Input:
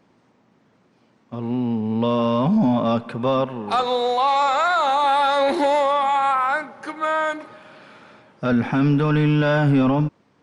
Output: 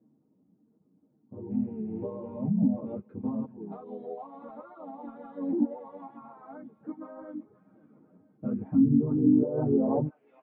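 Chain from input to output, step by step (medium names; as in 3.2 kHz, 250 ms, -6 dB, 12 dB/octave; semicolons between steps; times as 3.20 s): rattle on loud lows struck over -22 dBFS, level -25 dBFS; frequency weighting A; reverb removal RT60 0.74 s; treble shelf 2.9 kHz -5.5 dB; comb 6.5 ms, depth 90%; compression, threshold -21 dBFS, peak gain reduction 8 dB; low-pass sweep 240 Hz -> 620 Hz, 8.94–9.96 s; harmony voices -7 st -18 dB, -3 st -3 dB; feedback echo behind a high-pass 520 ms, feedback 45%, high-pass 2.5 kHz, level -9.5 dB; low-pass that closes with the level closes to 510 Hz, closed at -17.5 dBFS; three-phase chorus; trim +1.5 dB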